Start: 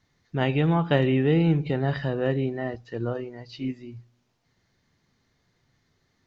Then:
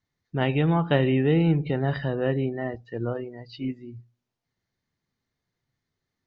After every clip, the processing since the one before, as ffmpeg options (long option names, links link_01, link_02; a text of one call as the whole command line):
ffmpeg -i in.wav -af "afftdn=noise_reduction=13:noise_floor=-47" out.wav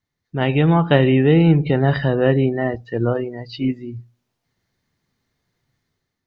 ffmpeg -i in.wav -af "dynaudnorm=framelen=180:gausssize=5:maxgain=8.5dB,volume=1dB" out.wav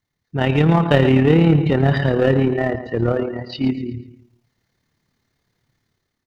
ffmpeg -i in.wav -filter_complex "[0:a]aecho=1:1:123|246|369|492:0.266|0.104|0.0405|0.0158,tremolo=f=36:d=0.519,asplit=2[link_01][link_02];[link_02]volume=20dB,asoftclip=hard,volume=-20dB,volume=-3.5dB[link_03];[link_01][link_03]amix=inputs=2:normalize=0" out.wav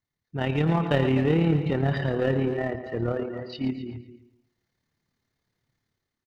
ffmpeg -i in.wav -filter_complex "[0:a]asplit=2[link_01][link_02];[link_02]adelay=260,highpass=300,lowpass=3400,asoftclip=type=hard:threshold=-11dB,volume=-11dB[link_03];[link_01][link_03]amix=inputs=2:normalize=0,volume=-8.5dB" out.wav